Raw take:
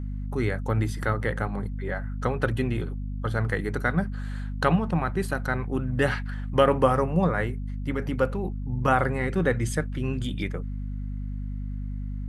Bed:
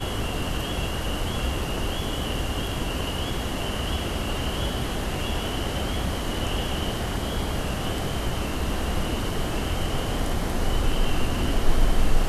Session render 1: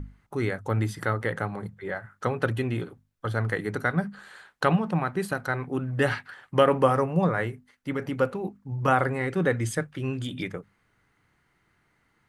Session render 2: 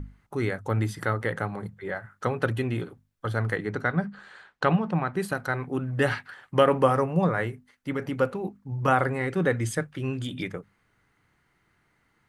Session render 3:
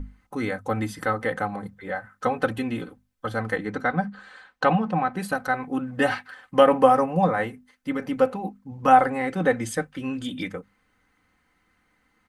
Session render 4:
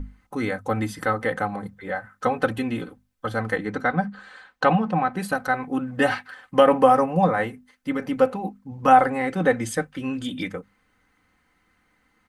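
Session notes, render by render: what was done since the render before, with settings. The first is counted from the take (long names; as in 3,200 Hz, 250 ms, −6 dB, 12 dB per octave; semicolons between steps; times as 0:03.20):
mains-hum notches 50/100/150/200/250 Hz
0:03.56–0:05.14: high-frequency loss of the air 80 metres
comb filter 3.9 ms, depth 68%; dynamic equaliser 770 Hz, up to +7 dB, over −41 dBFS, Q 3.9
level +1.5 dB; brickwall limiter −3 dBFS, peak gain reduction 2 dB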